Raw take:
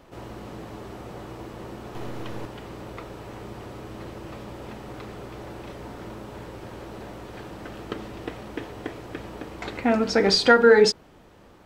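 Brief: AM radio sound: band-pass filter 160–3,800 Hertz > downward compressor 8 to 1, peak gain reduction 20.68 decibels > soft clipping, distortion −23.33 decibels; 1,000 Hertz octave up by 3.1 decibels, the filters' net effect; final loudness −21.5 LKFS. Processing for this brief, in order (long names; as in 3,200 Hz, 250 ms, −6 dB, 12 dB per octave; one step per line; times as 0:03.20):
band-pass filter 160–3,800 Hz
parametric band 1,000 Hz +5 dB
downward compressor 8 to 1, threshold −30 dBFS
soft clipping −21.5 dBFS
level +16.5 dB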